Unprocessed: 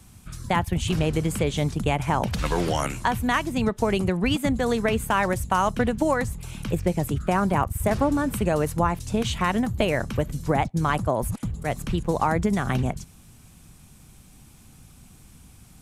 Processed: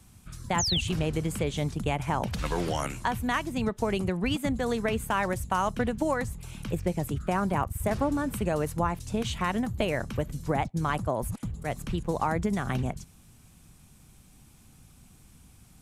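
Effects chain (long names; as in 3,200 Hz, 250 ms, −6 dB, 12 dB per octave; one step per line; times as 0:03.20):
sound drawn into the spectrogram fall, 0:00.58–0:00.81, 2,600–7,500 Hz −23 dBFS
level −5 dB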